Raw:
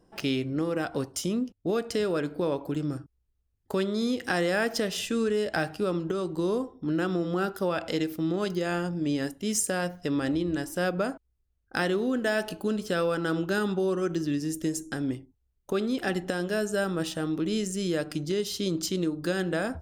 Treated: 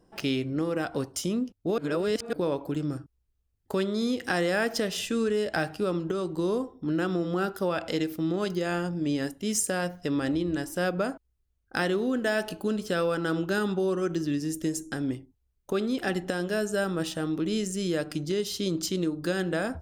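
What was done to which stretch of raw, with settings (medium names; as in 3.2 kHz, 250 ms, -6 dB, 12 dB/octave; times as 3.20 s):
1.78–2.33 s: reverse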